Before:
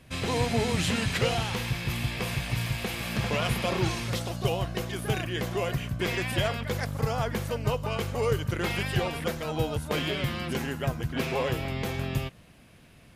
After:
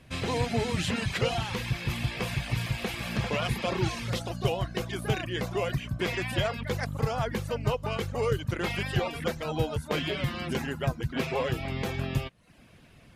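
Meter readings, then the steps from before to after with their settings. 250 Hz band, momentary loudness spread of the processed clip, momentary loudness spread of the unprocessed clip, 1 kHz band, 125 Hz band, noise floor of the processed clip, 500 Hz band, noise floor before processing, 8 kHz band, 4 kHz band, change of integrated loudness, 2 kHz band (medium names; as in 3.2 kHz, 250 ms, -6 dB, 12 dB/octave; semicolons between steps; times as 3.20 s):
-1.0 dB, 4 LU, 5 LU, -1.0 dB, -1.0 dB, -55 dBFS, -0.5 dB, -54 dBFS, -4.0 dB, -2.0 dB, -1.0 dB, -1.5 dB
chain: reverb removal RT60 0.54 s; treble shelf 10 kHz -8.5 dB; in parallel at -3 dB: gain riding; on the sum: trim -4.5 dB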